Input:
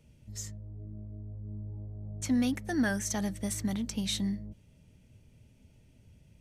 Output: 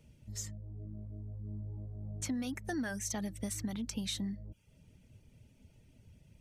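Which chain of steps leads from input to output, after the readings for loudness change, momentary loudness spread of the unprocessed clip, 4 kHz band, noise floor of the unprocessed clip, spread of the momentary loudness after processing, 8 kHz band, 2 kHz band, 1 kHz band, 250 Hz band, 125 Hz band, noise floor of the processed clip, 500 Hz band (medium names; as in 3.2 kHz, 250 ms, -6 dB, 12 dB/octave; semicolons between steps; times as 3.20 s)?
-5.5 dB, 15 LU, -4.5 dB, -61 dBFS, 10 LU, -3.0 dB, -6.5 dB, -5.5 dB, -7.0 dB, -3.5 dB, -65 dBFS, -6.0 dB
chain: reverb removal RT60 0.53 s; compression 5:1, threshold -34 dBFS, peak gain reduction 9.5 dB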